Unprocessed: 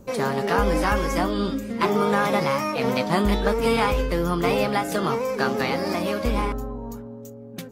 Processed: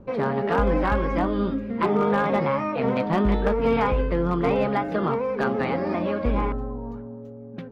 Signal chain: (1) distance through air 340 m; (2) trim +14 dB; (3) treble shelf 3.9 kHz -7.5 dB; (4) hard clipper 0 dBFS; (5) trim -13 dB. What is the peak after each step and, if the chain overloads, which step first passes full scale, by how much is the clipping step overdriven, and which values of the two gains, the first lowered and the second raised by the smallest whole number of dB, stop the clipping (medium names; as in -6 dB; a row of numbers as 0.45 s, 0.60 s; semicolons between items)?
-8.0 dBFS, +6.0 dBFS, +5.5 dBFS, 0.0 dBFS, -13.0 dBFS; step 2, 5.5 dB; step 2 +8 dB, step 5 -7 dB